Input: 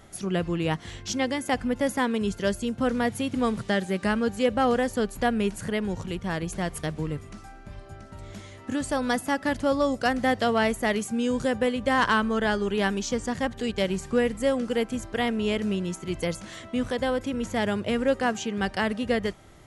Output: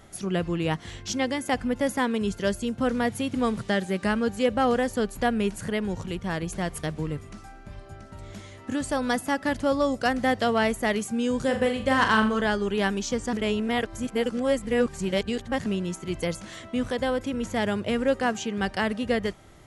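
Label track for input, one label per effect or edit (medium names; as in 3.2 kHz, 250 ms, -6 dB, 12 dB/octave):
11.430000	12.410000	flutter echo walls apart 7.1 m, dies away in 0.37 s
13.330000	15.660000	reverse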